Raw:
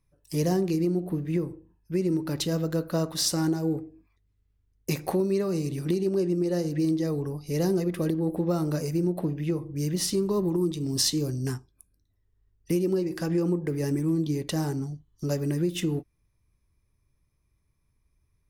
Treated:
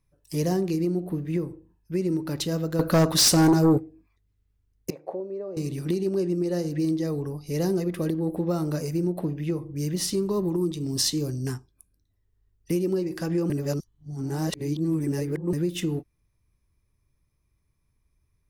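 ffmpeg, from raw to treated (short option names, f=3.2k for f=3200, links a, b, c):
-filter_complex "[0:a]asettb=1/sr,asplit=3[a][b][c];[a]atrim=end=2.794[d];[b]atrim=start=2.79:end=3.78,asetpts=PTS-STARTPTS,afade=t=in:d=0.004:c=qsin,afade=t=out:st=0.986:d=0.004:c=qsin,aeval=exprs='0.2*sin(PI/2*2.24*val(0)/0.2)':c=same[e];[c]atrim=start=3.776[f];[d][e]acrossfade=d=0.004:c1=hsin:c2=qsin[g];[g][f]acrossfade=d=0.004:c1=qsin:c2=hsin,asettb=1/sr,asplit=3[h][i][j];[h]atrim=end=4.904[k];[i]atrim=start=4.9:end=5.57,asetpts=PTS-STARTPTS,afade=t=in:d=0.004:c=qsin,afade=t=out:st=0.666:d=0.004:c=qsin,bandpass=f=560:t=q:w=2.8[l];[j]atrim=start=5.566[m];[k][l]acrossfade=d=0.004:c1=hsin:c2=qsin[n];[n][m]acrossfade=d=0.004:c1=qsin:c2=hsin,asplit=3[o][p][q];[o]atrim=end=13.502[r];[p]atrim=start=13.498:end=15.532,asetpts=PTS-STARTPTS,areverse[s];[q]atrim=start=15.528[t];[r][s]acrossfade=d=0.004:c1=hsin:c2=hsin[u];[u][t]acrossfade=d=0.004:c1=hsin:c2=hsin"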